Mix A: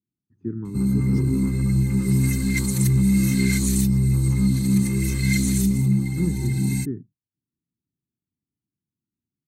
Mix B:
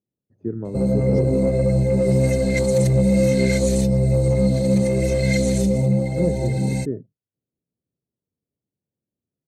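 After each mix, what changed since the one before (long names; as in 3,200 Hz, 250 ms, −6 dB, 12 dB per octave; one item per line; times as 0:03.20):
background: add low-pass filter 6,800 Hz 12 dB per octave
master: remove Chebyshev band-stop filter 310–1,100 Hz, order 2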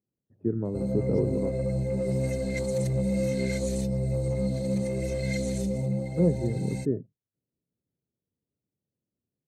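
speech: add high-frequency loss of the air 380 metres
background −10.0 dB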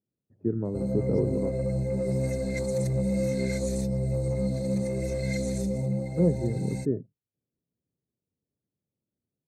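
master: add parametric band 3,000 Hz −12 dB 0.31 octaves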